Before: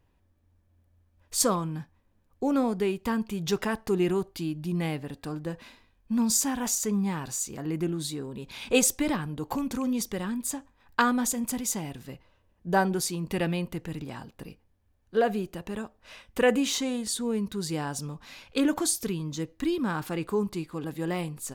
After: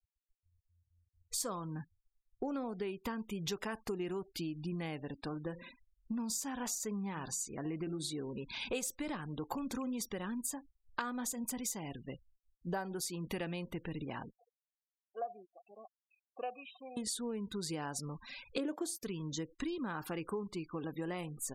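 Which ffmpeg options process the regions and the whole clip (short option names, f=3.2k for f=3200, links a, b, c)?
-filter_complex "[0:a]asettb=1/sr,asplit=3[a][b][c];[a]atrim=end=5.184[d];[b]atrim=start=5.18:end=8.37,asetpts=PTS-STARTPTS,afade=t=in:d=0.004:c=qsin,afade=t=out:st=3.186:d=0.004:c=qsin,highshelf=f=8.1k:g=-3,bandreject=f=175.5:t=h:w=4,bandreject=f=351:t=h:w=4,bandreject=f=526.5:t=h:w=4,bandreject=f=702:t=h:w=4,bandreject=f=877.5:t=h:w=4,bandreject=f=1.053k:t=h:w=4,bandreject=f=1.2285k:t=h:w=4,bandreject=f=1.404k:t=h:w=4,bandreject=f=1.5795k:t=h:w=4,bandreject=f=1.755k:t=h:w=4[e];[c]atrim=start=8.366[f];[d][e]acrossfade=d=0.004:c1=hsin:c2=qsin[g];[g][f]acrossfade=d=0.004:c1=qsin:c2=hsin,asettb=1/sr,asplit=3[h][i][j];[h]atrim=end=14.354[k];[i]atrim=start=14.35:end=16.97,asetpts=PTS-STARTPTS,afade=t=in:d=0.004:c=qsin,afade=t=out:st=2.616:d=0.004:c=qsin,acrossover=split=900[l][m];[l]aeval=exprs='val(0)*(1-0.5/2+0.5/2*cos(2*PI*2*n/s))':c=same[n];[m]aeval=exprs='val(0)*(1-0.5/2-0.5/2*cos(2*PI*2*n/s))':c=same[o];[n][o]amix=inputs=2:normalize=0,asplit=3[p][q][r];[p]bandpass=f=730:t=q:w=8,volume=0dB[s];[q]bandpass=f=1.09k:t=q:w=8,volume=-6dB[t];[r]bandpass=f=2.44k:t=q:w=8,volume=-9dB[u];[s][t][u]amix=inputs=3:normalize=0[v];[j]atrim=start=16.966[w];[k][v]acrossfade=d=0.004:c1=hsin:c2=qsin[x];[x][w]acrossfade=d=0.004:c1=qsin:c2=hsin,asettb=1/sr,asplit=3[y][z][aa];[y]atrim=end=18.574[ab];[z]atrim=start=18.57:end=19.03,asetpts=PTS-STARTPTS,afade=t=in:d=0.004:c=qsin,afade=t=out:st=0.456:d=0.004:c=qsin,highpass=240,agate=range=-33dB:threshold=-31dB:ratio=3:release=100:detection=peak,equalizer=f=420:t=o:w=1.4:g=13[ac];[aa]atrim=start=19.026[ad];[ab][ac]acrossfade=d=0.004:c1=hsin:c2=qsin[ae];[ae][ad]acrossfade=d=0.004:c1=qsin:c2=hsin,afftfilt=real='re*gte(hypot(re,im),0.00631)':imag='im*gte(hypot(re,im),0.00631)':win_size=1024:overlap=0.75,equalizer=f=69:w=0.33:g=-6,acompressor=threshold=-36dB:ratio=6"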